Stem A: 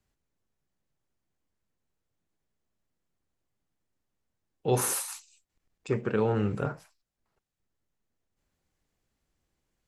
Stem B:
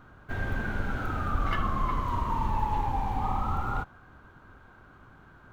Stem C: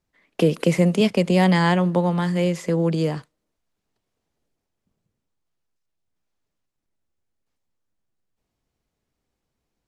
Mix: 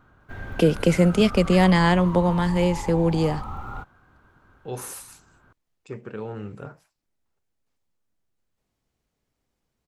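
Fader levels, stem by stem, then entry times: −7.5, −4.5, 0.0 decibels; 0.00, 0.00, 0.20 seconds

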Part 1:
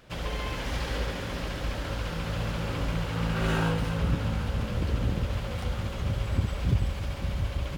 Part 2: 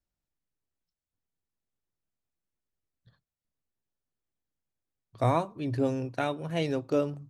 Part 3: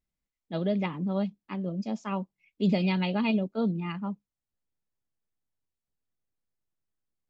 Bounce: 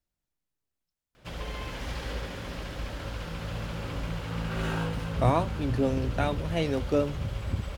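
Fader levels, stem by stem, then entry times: −4.0 dB, +1.0 dB, muted; 1.15 s, 0.00 s, muted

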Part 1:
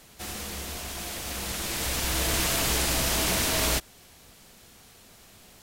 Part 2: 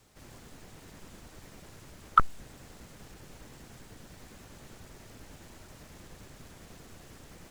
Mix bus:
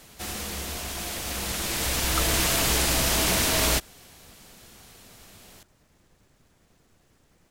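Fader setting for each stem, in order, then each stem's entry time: +2.5, −12.0 decibels; 0.00, 0.00 seconds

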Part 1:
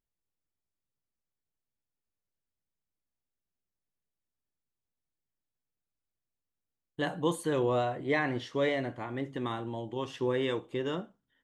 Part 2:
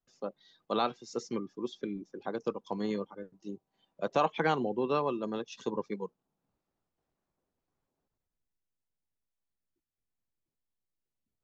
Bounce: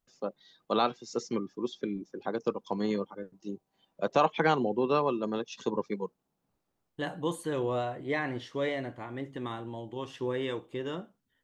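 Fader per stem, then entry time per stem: −2.5, +3.0 decibels; 0.00, 0.00 seconds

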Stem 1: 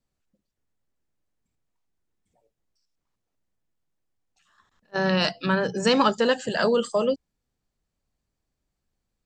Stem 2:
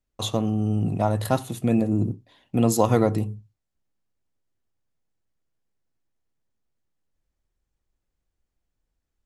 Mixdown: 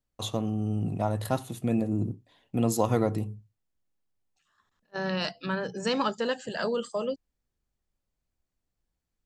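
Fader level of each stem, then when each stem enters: −7.5, −5.5 decibels; 0.00, 0.00 seconds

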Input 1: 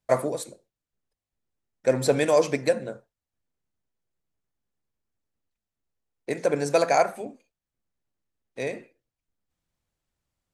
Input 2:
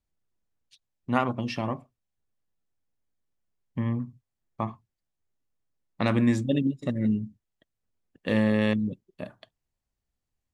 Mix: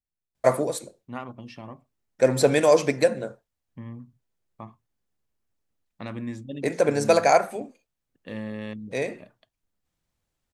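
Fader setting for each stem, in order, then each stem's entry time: +2.5, −11.0 decibels; 0.35, 0.00 seconds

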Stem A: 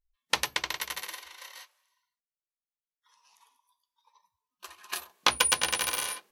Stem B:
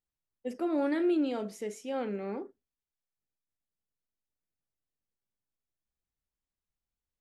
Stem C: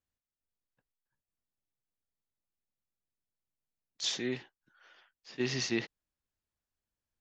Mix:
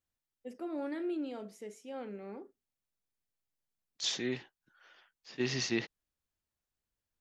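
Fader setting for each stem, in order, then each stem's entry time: muted, −8.5 dB, −0.5 dB; muted, 0.00 s, 0.00 s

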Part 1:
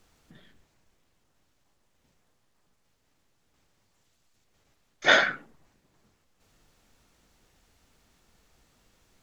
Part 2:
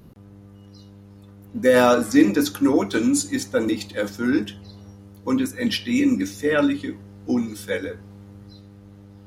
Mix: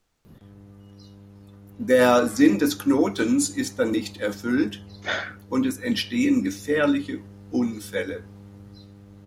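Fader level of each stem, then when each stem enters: −8.0, −1.5 decibels; 0.00, 0.25 seconds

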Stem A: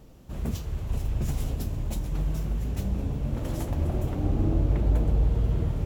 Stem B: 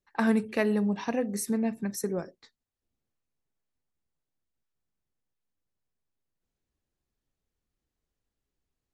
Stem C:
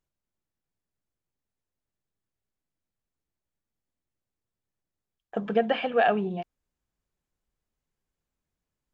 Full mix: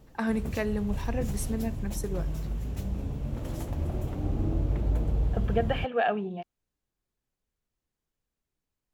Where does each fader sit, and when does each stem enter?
−4.0, −4.0, −4.0 decibels; 0.00, 0.00, 0.00 seconds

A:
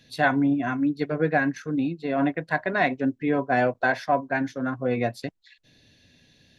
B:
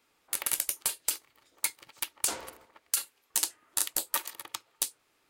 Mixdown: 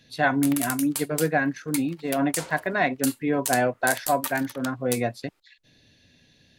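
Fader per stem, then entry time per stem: −0.5, −1.0 decibels; 0.00, 0.10 seconds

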